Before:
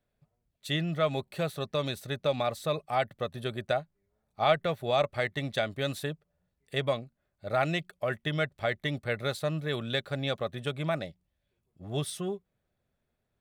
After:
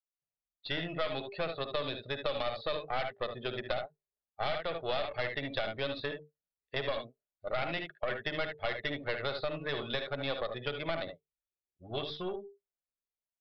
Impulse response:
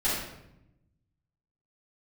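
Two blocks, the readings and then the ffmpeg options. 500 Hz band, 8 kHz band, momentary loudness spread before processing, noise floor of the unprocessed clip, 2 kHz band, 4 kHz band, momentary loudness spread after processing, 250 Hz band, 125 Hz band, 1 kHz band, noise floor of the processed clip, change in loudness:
−4.5 dB, below −20 dB, 8 LU, −81 dBFS, −2.5 dB, −2.0 dB, 6 LU, −7.0 dB, −10.5 dB, −5.0 dB, below −85 dBFS, −4.5 dB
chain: -filter_complex "[0:a]equalizer=frequency=160:width=0.95:gain=-10.5,bandreject=frequency=50:width_type=h:width=6,bandreject=frequency=100:width_type=h:width=6,bandreject=frequency=150:width_type=h:width=6,bandreject=frequency=200:width_type=h:width=6,bandreject=frequency=250:width_type=h:width=6,bandreject=frequency=300:width_type=h:width=6,bandreject=frequency=350:width_type=h:width=6,bandreject=frequency=400:width_type=h:width=6,bandreject=frequency=450:width_type=h:width=6,aecho=1:1:55|73:0.282|0.376,afftdn=noise_reduction=27:noise_floor=-45,dynaudnorm=framelen=110:gausssize=5:maxgain=10dB,aeval=exprs='(tanh(6.31*val(0)+0.75)-tanh(0.75))/6.31':channel_layout=same,aresample=11025,aresample=44100,acrossover=split=500|2000[link_01][link_02][link_03];[link_01]acompressor=threshold=-32dB:ratio=4[link_04];[link_02]acompressor=threshold=-33dB:ratio=4[link_05];[link_03]acompressor=threshold=-35dB:ratio=4[link_06];[link_04][link_05][link_06]amix=inputs=3:normalize=0,equalizer=frequency=80:width=1.6:gain=-4,volume=-3.5dB"

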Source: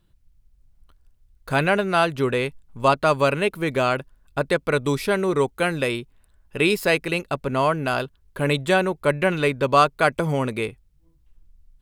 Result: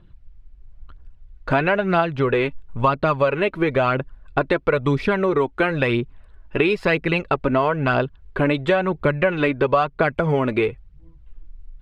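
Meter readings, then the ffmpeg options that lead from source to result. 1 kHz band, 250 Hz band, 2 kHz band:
0.0 dB, +3.0 dB, +1.0 dB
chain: -af "aphaser=in_gain=1:out_gain=1:delay=3.5:decay=0.45:speed=1:type=triangular,lowpass=2600,acompressor=threshold=-25dB:ratio=5,volume=9dB"

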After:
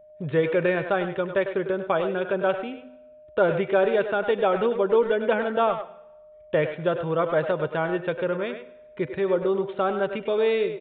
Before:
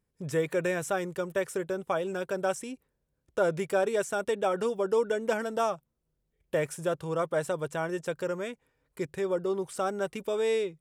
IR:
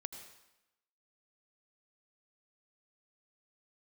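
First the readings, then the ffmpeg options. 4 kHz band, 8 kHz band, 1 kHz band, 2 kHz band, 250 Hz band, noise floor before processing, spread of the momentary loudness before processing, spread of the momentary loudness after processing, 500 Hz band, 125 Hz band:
+4.5 dB, below −40 dB, +6.0 dB, +6.0 dB, +6.0 dB, −80 dBFS, 7 LU, 10 LU, +6.0 dB, +5.5 dB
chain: -filter_complex "[0:a]aeval=exprs='val(0)+0.002*sin(2*PI*610*n/s)':channel_layout=same,bandreject=frequency=253.6:width_type=h:width=4,bandreject=frequency=507.2:width_type=h:width=4,bandreject=frequency=760.8:width_type=h:width=4,bandreject=frequency=1014.4:width_type=h:width=4,bandreject=frequency=1268:width_type=h:width=4,bandreject=frequency=1521.6:width_type=h:width=4,bandreject=frequency=1775.2:width_type=h:width=4,bandreject=frequency=2028.8:width_type=h:width=4,bandreject=frequency=2282.4:width_type=h:width=4,bandreject=frequency=2536:width_type=h:width=4,bandreject=frequency=2789.6:width_type=h:width=4,bandreject=frequency=3043.2:width_type=h:width=4,bandreject=frequency=3296.8:width_type=h:width=4,bandreject=frequency=3550.4:width_type=h:width=4,bandreject=frequency=3804:width_type=h:width=4,bandreject=frequency=4057.6:width_type=h:width=4,bandreject=frequency=4311.2:width_type=h:width=4,bandreject=frequency=4564.8:width_type=h:width=4,bandreject=frequency=4818.4:width_type=h:width=4,bandreject=frequency=5072:width_type=h:width=4,bandreject=frequency=5325.6:width_type=h:width=4,bandreject=frequency=5579.2:width_type=h:width=4,bandreject=frequency=5832.8:width_type=h:width=4,bandreject=frequency=6086.4:width_type=h:width=4,bandreject=frequency=6340:width_type=h:width=4,bandreject=frequency=6593.6:width_type=h:width=4,bandreject=frequency=6847.2:width_type=h:width=4,bandreject=frequency=7100.8:width_type=h:width=4,asplit=2[link_01][link_02];[link_02]adelay=100,highpass=300,lowpass=3400,asoftclip=type=hard:threshold=-24dB,volume=-8dB[link_03];[link_01][link_03]amix=inputs=2:normalize=0,asplit=2[link_04][link_05];[1:a]atrim=start_sample=2205[link_06];[link_05][link_06]afir=irnorm=-1:irlink=0,volume=-7dB[link_07];[link_04][link_07]amix=inputs=2:normalize=0,aresample=8000,aresample=44100,volume=3.5dB"

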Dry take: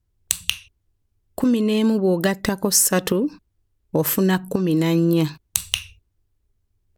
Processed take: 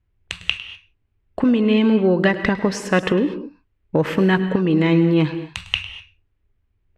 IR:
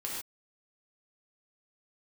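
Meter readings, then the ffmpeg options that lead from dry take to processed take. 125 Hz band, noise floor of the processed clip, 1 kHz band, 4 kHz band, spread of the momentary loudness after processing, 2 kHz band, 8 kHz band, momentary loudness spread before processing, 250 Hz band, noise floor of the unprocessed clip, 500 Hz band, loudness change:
+2.0 dB, −69 dBFS, +3.0 dB, 0.0 dB, 15 LU, +5.5 dB, −18.0 dB, 9 LU, +2.5 dB, −72 dBFS, +2.5 dB, +1.5 dB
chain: -filter_complex "[0:a]asoftclip=type=tanh:threshold=-2.5dB,lowpass=frequency=2400:width_type=q:width=1.7,asplit=2[link_01][link_02];[1:a]atrim=start_sample=2205,adelay=103[link_03];[link_02][link_03]afir=irnorm=-1:irlink=0,volume=-13.5dB[link_04];[link_01][link_04]amix=inputs=2:normalize=0,volume=2dB"

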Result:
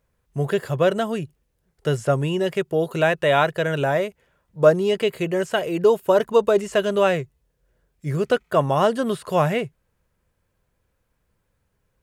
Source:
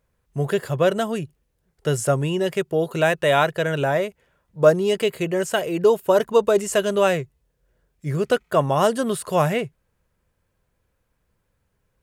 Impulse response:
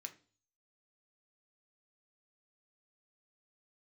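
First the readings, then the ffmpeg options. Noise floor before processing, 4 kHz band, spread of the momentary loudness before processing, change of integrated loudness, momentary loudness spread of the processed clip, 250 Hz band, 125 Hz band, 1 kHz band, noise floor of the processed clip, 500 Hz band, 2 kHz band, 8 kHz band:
−72 dBFS, −1.0 dB, 11 LU, 0.0 dB, 10 LU, 0.0 dB, 0.0 dB, 0.0 dB, −72 dBFS, 0.0 dB, 0.0 dB, −8.0 dB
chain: -filter_complex "[0:a]acrossover=split=4700[link_01][link_02];[link_02]acompressor=threshold=-43dB:ratio=4:attack=1:release=60[link_03];[link_01][link_03]amix=inputs=2:normalize=0"

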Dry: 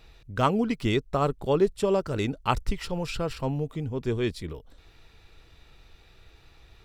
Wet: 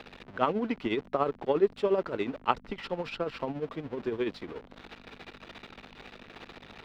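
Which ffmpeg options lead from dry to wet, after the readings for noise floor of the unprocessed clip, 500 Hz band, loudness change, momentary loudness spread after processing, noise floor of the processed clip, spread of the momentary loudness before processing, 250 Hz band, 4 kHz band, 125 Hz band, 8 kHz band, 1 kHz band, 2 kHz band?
−56 dBFS, −2.5 dB, −3.5 dB, 21 LU, −55 dBFS, 8 LU, −5.0 dB, −5.5 dB, −14.0 dB, below −15 dB, −2.5 dB, −2.5 dB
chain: -filter_complex "[0:a]aeval=exprs='val(0)+0.5*0.02*sgn(val(0))':channel_layout=same,aeval=exprs='val(0)+0.0126*(sin(2*PI*50*n/s)+sin(2*PI*2*50*n/s)/2+sin(2*PI*3*50*n/s)/3+sin(2*PI*4*50*n/s)/4+sin(2*PI*5*50*n/s)/5)':channel_layout=same,highshelf=frequency=4900:gain=-9,tremolo=f=14:d=0.62,acrossover=split=220 4400:gain=0.0891 1 0.0891[link_01][link_02][link_03];[link_01][link_02][link_03]amix=inputs=3:normalize=0"

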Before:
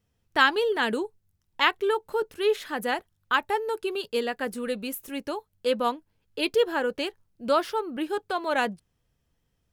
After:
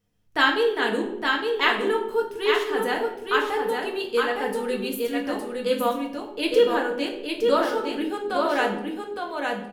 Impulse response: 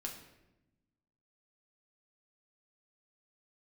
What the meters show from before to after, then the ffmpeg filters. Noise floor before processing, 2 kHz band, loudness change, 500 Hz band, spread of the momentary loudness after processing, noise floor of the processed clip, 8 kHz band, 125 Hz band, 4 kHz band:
−75 dBFS, +3.0 dB, +3.0 dB, +4.0 dB, 8 LU, −39 dBFS, +2.0 dB, can't be measured, +2.5 dB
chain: -filter_complex "[0:a]aecho=1:1:862:0.631[link_01];[1:a]atrim=start_sample=2205,asetrate=57330,aresample=44100[link_02];[link_01][link_02]afir=irnorm=-1:irlink=0,volume=5dB"

